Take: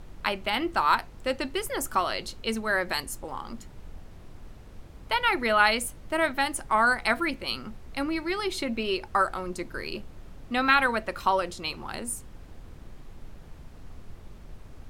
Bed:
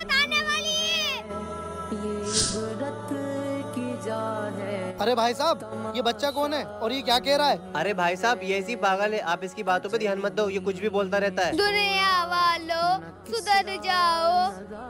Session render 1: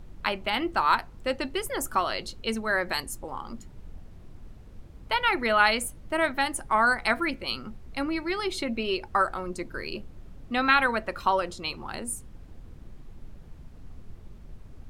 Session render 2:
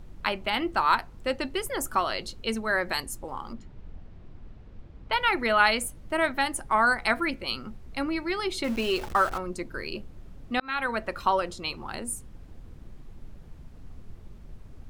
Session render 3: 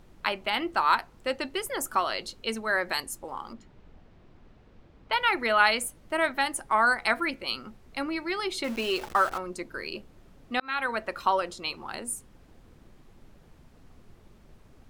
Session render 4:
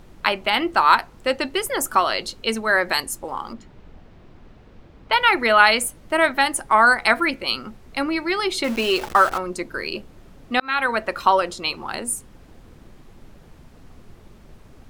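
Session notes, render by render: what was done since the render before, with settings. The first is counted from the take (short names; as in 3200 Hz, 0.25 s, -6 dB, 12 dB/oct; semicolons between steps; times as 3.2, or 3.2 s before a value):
denoiser 6 dB, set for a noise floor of -47 dBFS
3.53–5.13 LPF 4000 Hz; 8.64–9.38 zero-crossing step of -34 dBFS; 10.6–11.03 fade in
low shelf 170 Hz -12 dB
gain +8 dB; limiter -1 dBFS, peak gain reduction 1.5 dB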